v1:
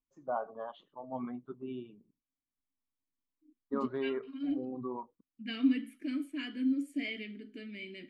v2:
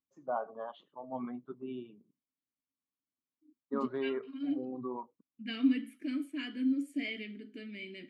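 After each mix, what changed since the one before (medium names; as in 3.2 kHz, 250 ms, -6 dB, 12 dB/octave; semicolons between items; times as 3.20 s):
first voice: add high-pass 130 Hz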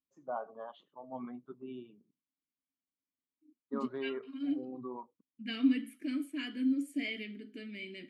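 first voice -3.5 dB; master: add treble shelf 7.5 kHz +7.5 dB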